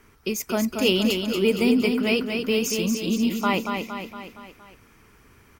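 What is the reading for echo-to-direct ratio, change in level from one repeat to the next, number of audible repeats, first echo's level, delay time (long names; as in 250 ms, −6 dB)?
−4.0 dB, −5.0 dB, 5, −5.5 dB, 232 ms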